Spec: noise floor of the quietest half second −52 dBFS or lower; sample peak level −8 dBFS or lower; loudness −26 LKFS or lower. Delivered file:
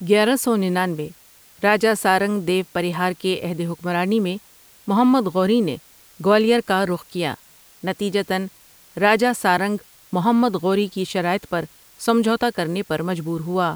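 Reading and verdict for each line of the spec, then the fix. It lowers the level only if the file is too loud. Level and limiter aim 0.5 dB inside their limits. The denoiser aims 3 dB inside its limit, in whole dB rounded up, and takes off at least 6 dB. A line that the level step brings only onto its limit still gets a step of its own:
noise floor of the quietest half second −50 dBFS: out of spec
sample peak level −4.5 dBFS: out of spec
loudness −20.5 LKFS: out of spec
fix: level −6 dB

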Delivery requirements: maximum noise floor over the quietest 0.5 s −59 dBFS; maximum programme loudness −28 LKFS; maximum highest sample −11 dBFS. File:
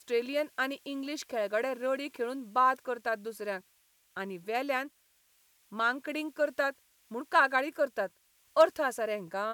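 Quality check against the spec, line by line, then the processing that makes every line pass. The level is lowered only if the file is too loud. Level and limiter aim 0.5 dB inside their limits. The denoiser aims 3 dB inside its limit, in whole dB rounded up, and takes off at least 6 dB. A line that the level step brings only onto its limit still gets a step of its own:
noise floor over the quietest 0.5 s −69 dBFS: in spec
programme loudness −31.5 LKFS: in spec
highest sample −11.5 dBFS: in spec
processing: no processing needed

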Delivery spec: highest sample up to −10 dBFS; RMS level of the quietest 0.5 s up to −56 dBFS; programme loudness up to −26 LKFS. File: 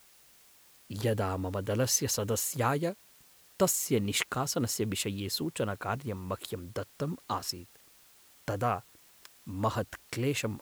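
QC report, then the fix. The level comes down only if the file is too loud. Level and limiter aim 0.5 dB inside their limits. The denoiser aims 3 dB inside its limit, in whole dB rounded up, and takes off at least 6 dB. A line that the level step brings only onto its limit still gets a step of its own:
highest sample −12.0 dBFS: in spec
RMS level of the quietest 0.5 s −60 dBFS: in spec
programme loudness −32.0 LKFS: in spec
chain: no processing needed

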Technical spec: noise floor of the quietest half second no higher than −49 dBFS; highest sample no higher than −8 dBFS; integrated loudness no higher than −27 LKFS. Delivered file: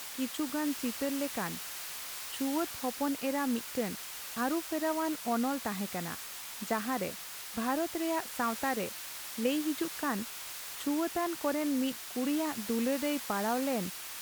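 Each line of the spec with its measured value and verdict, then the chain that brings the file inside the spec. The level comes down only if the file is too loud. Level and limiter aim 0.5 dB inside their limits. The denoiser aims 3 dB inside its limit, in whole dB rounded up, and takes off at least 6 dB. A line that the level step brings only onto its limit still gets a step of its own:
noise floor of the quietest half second −43 dBFS: out of spec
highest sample −17.5 dBFS: in spec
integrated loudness −33.5 LKFS: in spec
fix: broadband denoise 9 dB, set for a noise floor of −43 dBFS

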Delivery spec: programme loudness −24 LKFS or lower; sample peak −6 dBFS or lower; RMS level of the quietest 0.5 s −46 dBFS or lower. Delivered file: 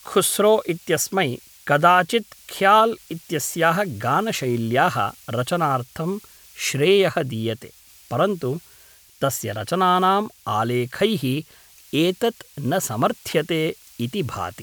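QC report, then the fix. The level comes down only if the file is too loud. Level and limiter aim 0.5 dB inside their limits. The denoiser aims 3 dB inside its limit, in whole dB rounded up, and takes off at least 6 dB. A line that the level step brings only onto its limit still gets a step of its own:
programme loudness −21.5 LKFS: out of spec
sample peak −2.5 dBFS: out of spec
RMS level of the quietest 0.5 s −51 dBFS: in spec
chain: level −3 dB
brickwall limiter −6.5 dBFS

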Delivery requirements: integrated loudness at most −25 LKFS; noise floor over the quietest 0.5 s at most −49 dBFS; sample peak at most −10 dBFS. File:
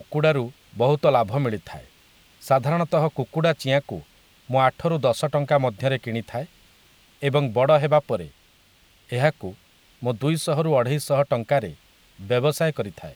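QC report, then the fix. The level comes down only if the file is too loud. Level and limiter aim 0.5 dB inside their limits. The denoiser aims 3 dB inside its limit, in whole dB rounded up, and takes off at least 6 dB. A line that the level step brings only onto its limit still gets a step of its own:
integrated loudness −22.5 LKFS: out of spec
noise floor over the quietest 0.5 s −57 dBFS: in spec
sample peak −5.0 dBFS: out of spec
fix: level −3 dB
brickwall limiter −10.5 dBFS

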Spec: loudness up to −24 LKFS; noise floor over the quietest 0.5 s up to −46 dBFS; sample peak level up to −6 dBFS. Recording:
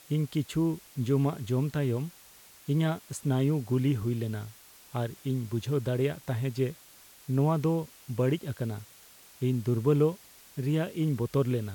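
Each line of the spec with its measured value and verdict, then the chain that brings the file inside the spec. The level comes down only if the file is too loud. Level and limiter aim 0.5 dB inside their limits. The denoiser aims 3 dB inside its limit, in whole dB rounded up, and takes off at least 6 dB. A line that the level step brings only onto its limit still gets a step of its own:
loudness −30.0 LKFS: in spec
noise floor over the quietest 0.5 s −54 dBFS: in spec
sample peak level −14.5 dBFS: in spec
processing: no processing needed

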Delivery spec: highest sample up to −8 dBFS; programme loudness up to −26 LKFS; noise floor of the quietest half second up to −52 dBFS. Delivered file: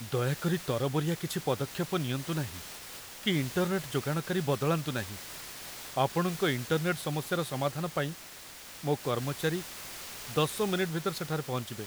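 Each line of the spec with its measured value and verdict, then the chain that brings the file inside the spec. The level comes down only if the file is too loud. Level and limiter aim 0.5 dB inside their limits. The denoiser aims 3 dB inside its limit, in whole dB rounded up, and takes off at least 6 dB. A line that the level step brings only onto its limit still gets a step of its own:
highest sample −13.5 dBFS: in spec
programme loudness −32.0 LKFS: in spec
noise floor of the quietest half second −47 dBFS: out of spec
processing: broadband denoise 8 dB, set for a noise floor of −47 dBFS

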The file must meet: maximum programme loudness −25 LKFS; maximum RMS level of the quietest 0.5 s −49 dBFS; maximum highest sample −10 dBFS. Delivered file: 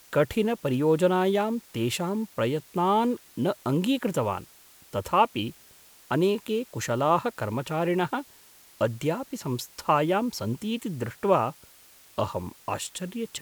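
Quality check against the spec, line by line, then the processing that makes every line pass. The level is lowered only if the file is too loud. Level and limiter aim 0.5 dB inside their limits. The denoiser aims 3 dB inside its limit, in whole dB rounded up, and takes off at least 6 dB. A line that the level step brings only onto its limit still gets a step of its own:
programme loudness −27.5 LKFS: in spec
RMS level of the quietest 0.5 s −54 dBFS: in spec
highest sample −7.5 dBFS: out of spec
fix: brickwall limiter −10.5 dBFS

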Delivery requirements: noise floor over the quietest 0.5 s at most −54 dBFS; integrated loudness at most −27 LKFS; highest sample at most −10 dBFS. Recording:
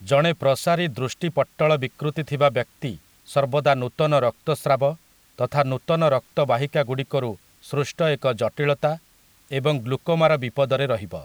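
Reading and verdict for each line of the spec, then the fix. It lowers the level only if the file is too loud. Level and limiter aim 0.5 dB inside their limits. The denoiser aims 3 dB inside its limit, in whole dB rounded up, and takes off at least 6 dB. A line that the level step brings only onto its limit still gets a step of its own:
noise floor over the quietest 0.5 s −57 dBFS: in spec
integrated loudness −22.5 LKFS: out of spec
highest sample −4.0 dBFS: out of spec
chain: level −5 dB
brickwall limiter −10.5 dBFS

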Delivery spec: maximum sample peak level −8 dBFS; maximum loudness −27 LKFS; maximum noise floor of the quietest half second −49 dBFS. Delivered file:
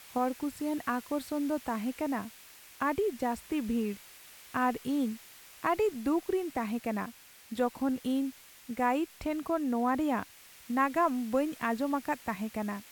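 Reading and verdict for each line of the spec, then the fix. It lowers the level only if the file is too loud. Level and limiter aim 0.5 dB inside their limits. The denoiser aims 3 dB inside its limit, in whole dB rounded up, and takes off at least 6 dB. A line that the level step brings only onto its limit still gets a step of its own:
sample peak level −16.0 dBFS: in spec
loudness −32.5 LKFS: in spec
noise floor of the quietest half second −53 dBFS: in spec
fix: no processing needed

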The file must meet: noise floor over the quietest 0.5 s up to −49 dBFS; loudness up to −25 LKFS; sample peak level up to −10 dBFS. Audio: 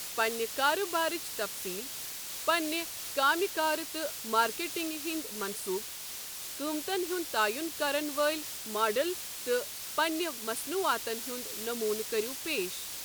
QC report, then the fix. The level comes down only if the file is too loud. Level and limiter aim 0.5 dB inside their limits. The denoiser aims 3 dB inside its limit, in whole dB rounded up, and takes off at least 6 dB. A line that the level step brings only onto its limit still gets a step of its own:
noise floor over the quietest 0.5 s −41 dBFS: out of spec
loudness −31.5 LKFS: in spec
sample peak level −14.5 dBFS: in spec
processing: broadband denoise 11 dB, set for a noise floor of −41 dBFS

